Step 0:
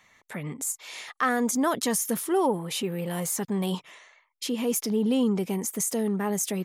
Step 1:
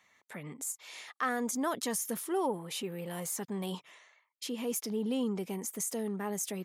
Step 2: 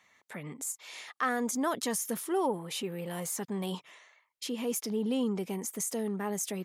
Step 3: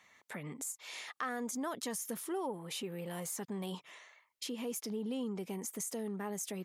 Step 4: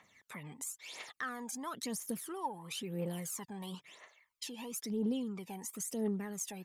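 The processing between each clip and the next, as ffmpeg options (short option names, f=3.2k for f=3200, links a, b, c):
-af "highpass=f=170:p=1,volume=-7dB"
-af "highshelf=f=12k:g=-3.5,volume=2dB"
-af "acompressor=threshold=-43dB:ratio=2,volume=1dB"
-af "aphaser=in_gain=1:out_gain=1:delay=1.3:decay=0.69:speed=0.99:type=triangular,volume=-3.5dB"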